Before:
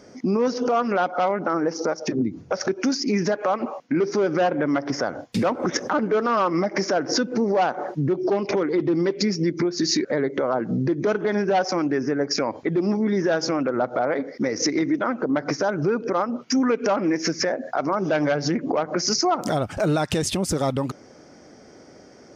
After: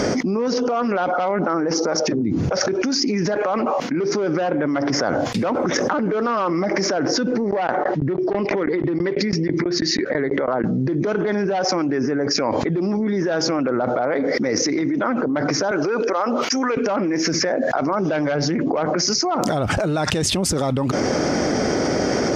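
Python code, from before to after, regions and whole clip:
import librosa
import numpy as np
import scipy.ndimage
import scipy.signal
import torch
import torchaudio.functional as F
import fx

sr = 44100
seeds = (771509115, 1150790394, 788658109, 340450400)

y = fx.chain(x, sr, fx.lowpass(hz=4800.0, slope=12),
    fx.peak_eq(hz=1900.0, db=7.0, octaves=0.34),
    fx.tremolo_decay(direction='decaying', hz=6.1, depth_db=32), at=(7.36, 10.64))
y = fx.chain(y, sr, fx.highpass(hz=450.0, slope=12),
    fx.high_shelf(hz=5500.0, db=6.0), at=(15.71, 16.77))
y = fx.high_shelf(y, sr, hz=9200.0, db=-8.0)
y = fx.env_flatten(y, sr, amount_pct=100)
y = F.gain(torch.from_numpy(y), -3.0).numpy()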